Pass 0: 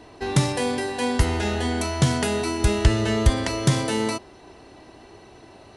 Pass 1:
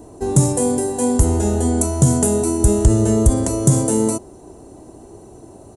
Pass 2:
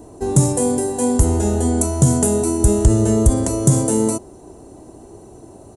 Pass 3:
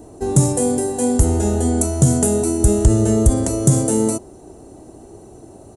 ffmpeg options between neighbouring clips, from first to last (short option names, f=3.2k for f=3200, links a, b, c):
-af "firequalizer=gain_entry='entry(340,0);entry(2000,-22);entry(4900,-15);entry(7000,6)':delay=0.05:min_phase=1,alimiter=level_in=9dB:limit=-1dB:release=50:level=0:latency=1,volume=-1dB"
-af anull
-af "bandreject=f=1k:w=14"